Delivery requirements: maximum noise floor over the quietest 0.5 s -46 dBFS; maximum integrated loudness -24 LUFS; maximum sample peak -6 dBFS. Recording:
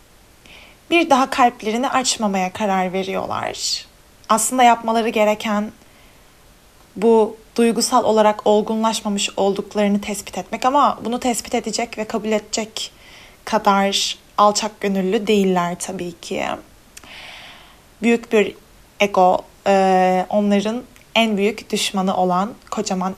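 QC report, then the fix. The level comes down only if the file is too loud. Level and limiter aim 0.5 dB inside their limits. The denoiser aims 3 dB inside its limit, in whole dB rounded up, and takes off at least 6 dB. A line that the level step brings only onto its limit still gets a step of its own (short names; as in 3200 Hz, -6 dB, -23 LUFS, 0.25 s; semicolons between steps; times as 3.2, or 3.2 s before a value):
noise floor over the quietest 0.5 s -49 dBFS: OK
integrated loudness -18.5 LUFS: fail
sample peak -2.0 dBFS: fail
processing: gain -6 dB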